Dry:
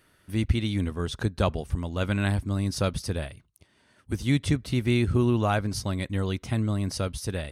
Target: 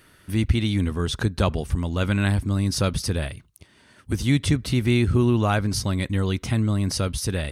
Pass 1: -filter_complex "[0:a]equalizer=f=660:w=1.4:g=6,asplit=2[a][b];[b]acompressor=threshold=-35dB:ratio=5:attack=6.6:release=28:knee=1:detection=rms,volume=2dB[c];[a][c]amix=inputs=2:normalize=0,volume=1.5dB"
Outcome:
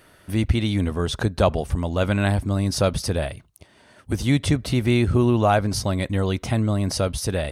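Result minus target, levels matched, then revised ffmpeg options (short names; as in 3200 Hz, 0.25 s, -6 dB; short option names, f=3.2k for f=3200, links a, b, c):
500 Hz band +4.0 dB
-filter_complex "[0:a]equalizer=f=660:w=1.4:g=-3,asplit=2[a][b];[b]acompressor=threshold=-35dB:ratio=5:attack=6.6:release=28:knee=1:detection=rms,volume=2dB[c];[a][c]amix=inputs=2:normalize=0,volume=1.5dB"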